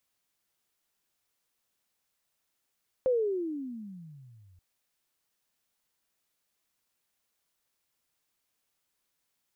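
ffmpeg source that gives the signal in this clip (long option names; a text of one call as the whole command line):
ffmpeg -f lavfi -i "aevalsrc='pow(10,(-21.5-34.5*t/1.53)/20)*sin(2*PI*528*1.53/(-31.5*log(2)/12)*(exp(-31.5*log(2)/12*t/1.53)-1))':duration=1.53:sample_rate=44100" out.wav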